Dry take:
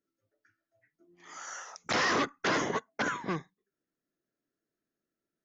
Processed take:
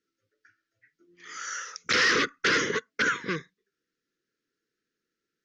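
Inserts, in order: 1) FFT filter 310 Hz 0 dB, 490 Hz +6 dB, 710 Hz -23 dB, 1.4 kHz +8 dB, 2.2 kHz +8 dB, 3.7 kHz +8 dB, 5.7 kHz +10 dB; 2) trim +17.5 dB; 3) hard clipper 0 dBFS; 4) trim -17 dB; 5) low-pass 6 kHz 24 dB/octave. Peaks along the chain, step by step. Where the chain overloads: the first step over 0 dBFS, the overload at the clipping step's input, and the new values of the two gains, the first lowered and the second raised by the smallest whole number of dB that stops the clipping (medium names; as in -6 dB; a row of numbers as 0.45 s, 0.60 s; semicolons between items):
-11.5 dBFS, +6.0 dBFS, 0.0 dBFS, -17.0 dBFS, -15.0 dBFS; step 2, 6.0 dB; step 2 +11.5 dB, step 4 -11 dB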